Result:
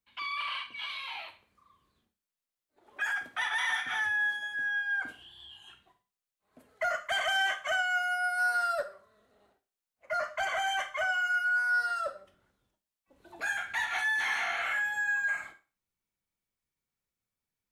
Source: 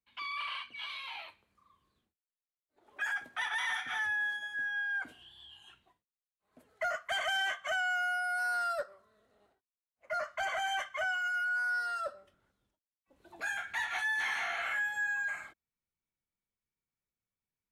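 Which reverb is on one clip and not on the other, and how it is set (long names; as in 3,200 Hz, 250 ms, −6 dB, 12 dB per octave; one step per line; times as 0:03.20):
four-comb reverb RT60 0.34 s, combs from 31 ms, DRR 10.5 dB
level +3 dB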